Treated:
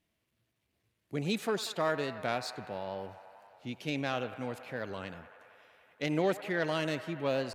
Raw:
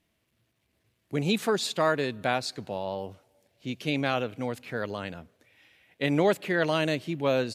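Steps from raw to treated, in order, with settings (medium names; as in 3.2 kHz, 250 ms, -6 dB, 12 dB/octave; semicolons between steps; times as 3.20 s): self-modulated delay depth 0.061 ms; feedback echo behind a band-pass 94 ms, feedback 82%, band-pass 1.2 kHz, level -13 dB; warped record 45 rpm, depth 100 cents; trim -6 dB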